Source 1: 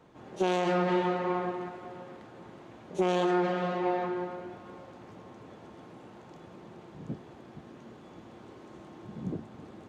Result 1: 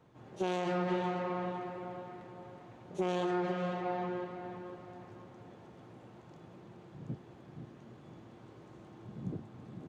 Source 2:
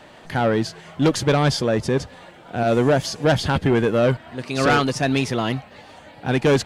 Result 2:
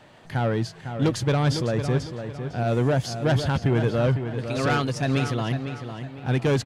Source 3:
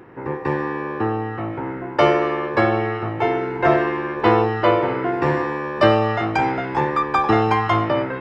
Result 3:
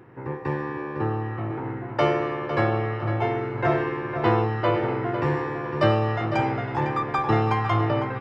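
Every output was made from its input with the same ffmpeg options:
ffmpeg -i in.wav -filter_complex "[0:a]equalizer=frequency=120:width=2.1:gain=8.5,asplit=2[link_01][link_02];[link_02]adelay=504,lowpass=frequency=4000:poles=1,volume=-8.5dB,asplit=2[link_03][link_04];[link_04]adelay=504,lowpass=frequency=4000:poles=1,volume=0.38,asplit=2[link_05][link_06];[link_06]adelay=504,lowpass=frequency=4000:poles=1,volume=0.38,asplit=2[link_07][link_08];[link_08]adelay=504,lowpass=frequency=4000:poles=1,volume=0.38[link_09];[link_03][link_05][link_07][link_09]amix=inputs=4:normalize=0[link_10];[link_01][link_10]amix=inputs=2:normalize=0,volume=-6.5dB" out.wav

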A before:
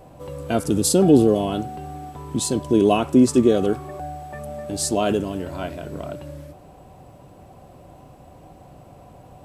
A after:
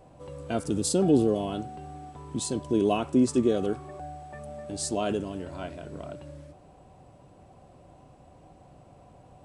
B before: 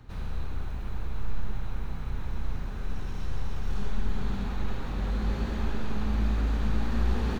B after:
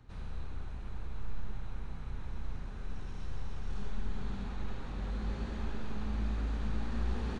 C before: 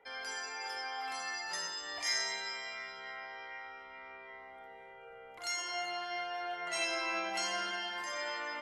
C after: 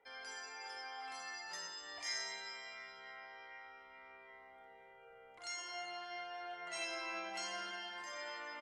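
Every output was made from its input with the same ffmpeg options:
ffmpeg -i in.wav -af "aresample=22050,aresample=44100,volume=-7.5dB" out.wav

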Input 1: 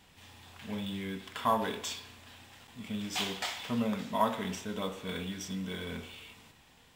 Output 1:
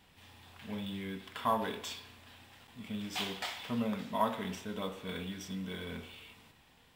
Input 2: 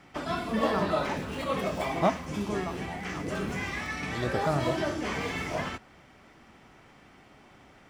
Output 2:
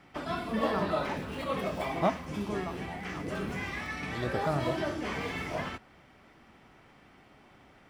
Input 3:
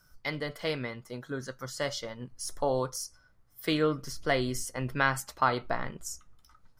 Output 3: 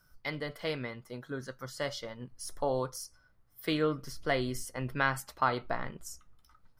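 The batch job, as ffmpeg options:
ffmpeg -i in.wav -af "equalizer=frequency=6800:width=1.7:gain=-5,volume=-2.5dB" out.wav

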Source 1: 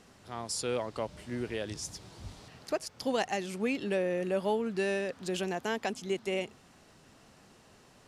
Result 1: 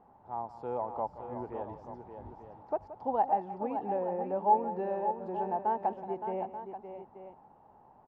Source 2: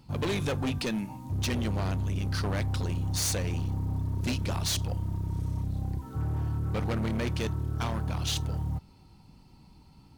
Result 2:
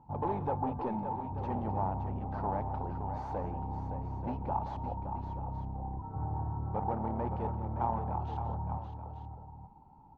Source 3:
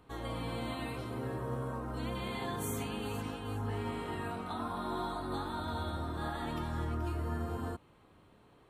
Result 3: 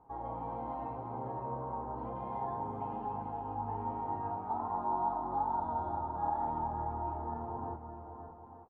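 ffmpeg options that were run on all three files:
ffmpeg -i in.wav -filter_complex "[0:a]lowpass=frequency=860:width_type=q:width=9.7,asplit=2[link_01][link_02];[link_02]aecho=0:1:175|567|883:0.188|0.376|0.237[link_03];[link_01][link_03]amix=inputs=2:normalize=0,volume=-7dB" out.wav

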